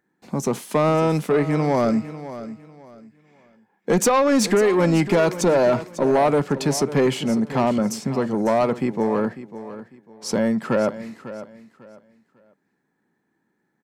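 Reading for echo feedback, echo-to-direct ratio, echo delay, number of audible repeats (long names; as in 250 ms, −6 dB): 27%, −13.5 dB, 548 ms, 2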